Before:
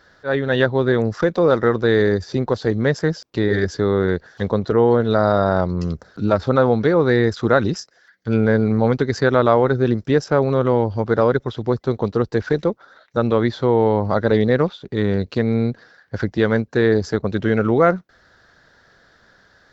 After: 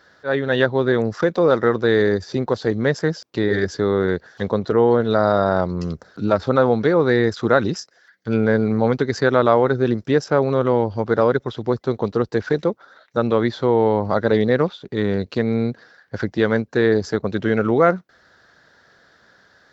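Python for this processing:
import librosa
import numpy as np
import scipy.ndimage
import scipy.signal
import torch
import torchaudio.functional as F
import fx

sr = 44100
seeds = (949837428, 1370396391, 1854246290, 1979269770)

y = fx.highpass(x, sr, hz=130.0, slope=6)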